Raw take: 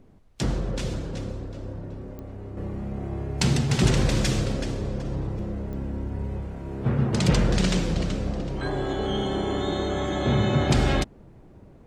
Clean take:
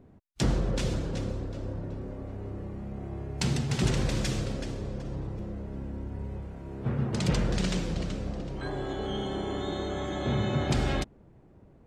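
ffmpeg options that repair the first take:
ffmpeg -i in.wav -af "adeclick=threshold=4,agate=range=-21dB:threshold=-36dB,asetnsamples=nb_out_samples=441:pad=0,asendcmd='2.57 volume volume -6dB',volume=0dB" out.wav

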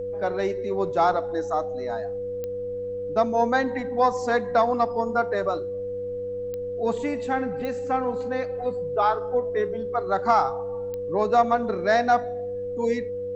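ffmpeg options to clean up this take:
ffmpeg -i in.wav -af "adeclick=threshold=4,bandreject=frequency=97.9:width_type=h:width=4,bandreject=frequency=195.8:width_type=h:width=4,bandreject=frequency=293.7:width_type=h:width=4,bandreject=frequency=490:width=30,agate=range=-21dB:threshold=-23dB" out.wav

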